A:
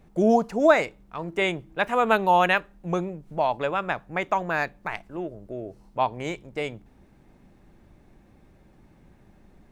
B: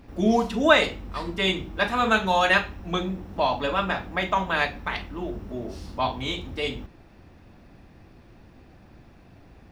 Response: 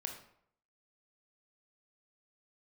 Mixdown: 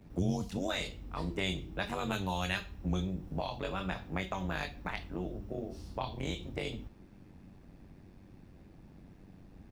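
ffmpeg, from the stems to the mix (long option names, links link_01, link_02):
-filter_complex "[0:a]equalizer=frequency=180:width=1.3:gain=9,tremolo=f=95:d=0.947,volume=-2dB[link_01];[1:a]equalizer=frequency=1300:width=0.33:gain=-7,adelay=17,volume=-7dB[link_02];[link_01][link_02]amix=inputs=2:normalize=0,acrossover=split=120|3000[link_03][link_04][link_05];[link_04]acompressor=threshold=-34dB:ratio=6[link_06];[link_03][link_06][link_05]amix=inputs=3:normalize=0"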